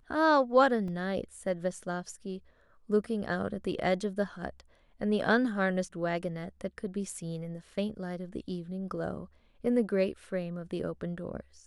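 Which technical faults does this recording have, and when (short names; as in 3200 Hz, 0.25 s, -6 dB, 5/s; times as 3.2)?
0.88 gap 2.9 ms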